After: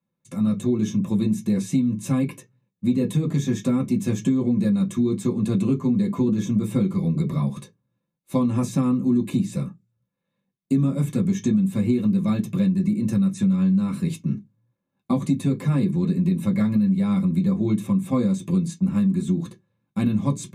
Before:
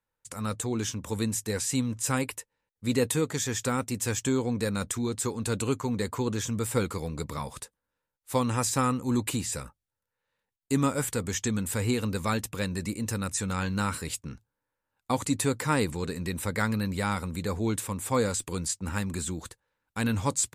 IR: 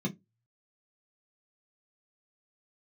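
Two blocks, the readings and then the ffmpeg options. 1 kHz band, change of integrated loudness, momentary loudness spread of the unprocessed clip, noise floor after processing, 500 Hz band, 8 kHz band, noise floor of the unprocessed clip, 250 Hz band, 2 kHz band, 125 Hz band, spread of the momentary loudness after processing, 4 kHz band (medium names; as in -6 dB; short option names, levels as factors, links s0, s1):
-5.0 dB, +7.0 dB, 8 LU, -80 dBFS, +0.5 dB, -9.5 dB, under -85 dBFS, +11.0 dB, -7.5 dB, +8.0 dB, 5 LU, no reading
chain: -filter_complex "[1:a]atrim=start_sample=2205[s0];[0:a][s0]afir=irnorm=-1:irlink=0,acompressor=threshold=0.178:ratio=6,volume=0.75"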